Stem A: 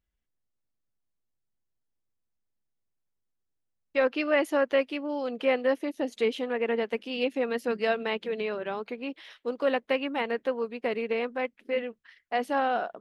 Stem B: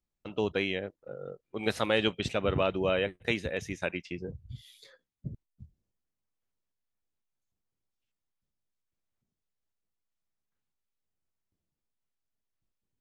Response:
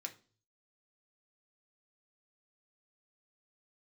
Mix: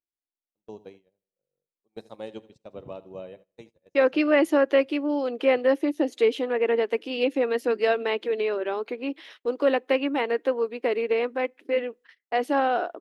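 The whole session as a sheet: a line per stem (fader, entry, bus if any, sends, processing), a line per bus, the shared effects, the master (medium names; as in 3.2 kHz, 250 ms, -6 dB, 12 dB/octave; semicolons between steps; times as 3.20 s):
+1.5 dB, 0.00 s, send -22 dB, no echo send, resonant low shelf 210 Hz -14 dB, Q 3
-8.0 dB, 0.30 s, send -9 dB, echo send -17.5 dB, high-pass 110 Hz; high-order bell 2.1 kHz -13 dB; upward expansion 2.5:1, over -39 dBFS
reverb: on, RT60 0.40 s, pre-delay 3 ms
echo: feedback delay 80 ms, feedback 50%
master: gate -50 dBFS, range -17 dB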